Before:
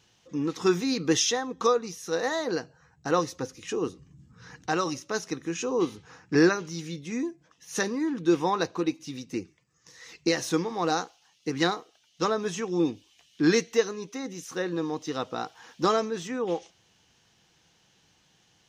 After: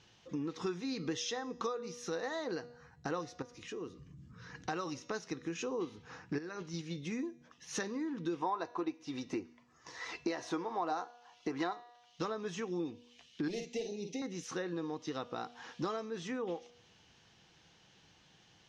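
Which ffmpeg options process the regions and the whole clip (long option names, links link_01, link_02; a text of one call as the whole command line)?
ffmpeg -i in.wav -filter_complex "[0:a]asettb=1/sr,asplit=3[link_01][link_02][link_03];[link_01]atrim=end=3.424[link_04];[link_02]atrim=start=3.42:end=4.55,asetpts=PTS-STARTPTS,afade=type=in:duration=0.004:curve=qsin,afade=type=out:start_time=1.126:duration=0.004:curve=qsin,acompressor=threshold=-51dB:ratio=2:attack=3.2:release=140:knee=1:detection=peak,asuperstop=centerf=820:order=4:qfactor=6.9[link_05];[link_03]atrim=start=4.546[link_06];[link_04][link_05]acrossfade=duration=0.004:curve1=hsin:curve2=qsin[link_07];[link_07][link_06]acrossfade=duration=0.004:curve1=qsin:curve2=hsin,asettb=1/sr,asplit=3[link_08][link_09][link_10];[link_08]atrim=end=6.384[link_11];[link_09]atrim=start=6.38:end=6.96,asetpts=PTS-STARTPTS,afade=type=in:duration=0.004:curve=qsin,afade=type=out:start_time=0.576:duration=0.004:curve=qsin,agate=range=-6dB:threshold=-36dB:ratio=16:release=100:detection=peak,acompressor=threshold=-30dB:ratio=6:attack=3.2:release=140:knee=1:detection=peak[link_12];[link_10]atrim=start=6.956[link_13];[link_11][link_12]acrossfade=duration=0.004:curve1=hsin:curve2=qsin[link_14];[link_14][link_13]acrossfade=duration=0.004:curve1=qsin:curve2=hsin,asettb=1/sr,asplit=3[link_15][link_16][link_17];[link_15]atrim=end=8.424[link_18];[link_16]atrim=start=8.42:end=11.73,asetpts=PTS-STARTPTS,afade=type=in:duration=0.004:curve=qsin,afade=type=out:start_time=3.306:duration=0.004:curve=qsin,equalizer=frequency=850:width=0.81:gain=12.5,aecho=1:1:3:0.35,atrim=end_sample=145971[link_19];[link_17]atrim=start=11.726[link_20];[link_18][link_19]acrossfade=duration=0.004:curve1=hsin:curve2=qsin[link_21];[link_21][link_20]acrossfade=duration=0.004:curve1=qsin:curve2=hsin,asettb=1/sr,asplit=3[link_22][link_23][link_24];[link_22]atrim=end=13.484[link_25];[link_23]atrim=start=13.48:end=14.22,asetpts=PTS-STARTPTS,afade=type=in:duration=0.004:curve=qsin,afade=type=out:start_time=0.736:duration=0.004:curve=qsin,volume=22.5dB,asoftclip=hard,volume=-22.5dB,asuperstop=centerf=1300:order=8:qfactor=0.96,asplit=2[link_26][link_27];[link_27]adelay=49,volume=-7dB[link_28];[link_26][link_28]amix=inputs=2:normalize=0,atrim=end_sample=32634[link_29];[link_24]atrim=start=14.216[link_30];[link_25][link_29]acrossfade=duration=0.004:curve1=hsin:curve2=qsin[link_31];[link_31][link_30]acrossfade=duration=0.004:curve1=qsin:curve2=hsin,lowpass=5300,bandreject=frequency=241:width_type=h:width=4,bandreject=frequency=482:width_type=h:width=4,bandreject=frequency=723:width_type=h:width=4,bandreject=frequency=964:width_type=h:width=4,bandreject=frequency=1205:width_type=h:width=4,bandreject=frequency=1446:width_type=h:width=4,bandreject=frequency=1687:width_type=h:width=4,bandreject=frequency=1928:width_type=h:width=4,bandreject=frequency=2169:width_type=h:width=4,bandreject=frequency=2410:width_type=h:width=4,bandreject=frequency=2651:width_type=h:width=4,bandreject=frequency=2892:width_type=h:width=4,bandreject=frequency=3133:width_type=h:width=4,bandreject=frequency=3374:width_type=h:width=4,bandreject=frequency=3615:width_type=h:width=4,bandreject=frequency=3856:width_type=h:width=4,bandreject=frequency=4097:width_type=h:width=4,bandreject=frequency=4338:width_type=h:width=4,bandreject=frequency=4579:width_type=h:width=4,bandreject=frequency=4820:width_type=h:width=4,bandreject=frequency=5061:width_type=h:width=4,bandreject=frequency=5302:width_type=h:width=4,bandreject=frequency=5543:width_type=h:width=4,bandreject=frequency=5784:width_type=h:width=4,bandreject=frequency=6025:width_type=h:width=4,bandreject=frequency=6266:width_type=h:width=4,bandreject=frequency=6507:width_type=h:width=4,bandreject=frequency=6748:width_type=h:width=4,bandreject=frequency=6989:width_type=h:width=4,bandreject=frequency=7230:width_type=h:width=4,bandreject=frequency=7471:width_type=h:width=4,acompressor=threshold=-38dB:ratio=4,volume=1dB" out.wav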